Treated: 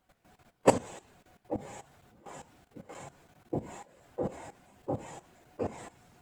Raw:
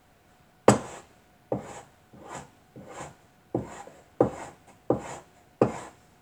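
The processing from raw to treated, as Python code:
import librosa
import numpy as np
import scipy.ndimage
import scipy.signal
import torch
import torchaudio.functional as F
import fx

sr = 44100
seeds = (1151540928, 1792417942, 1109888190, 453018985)

y = fx.phase_scramble(x, sr, seeds[0], window_ms=50)
y = fx.level_steps(y, sr, step_db=15)
y = fx.dynamic_eq(y, sr, hz=1300.0, q=2.0, threshold_db=-53.0, ratio=4.0, max_db=-6)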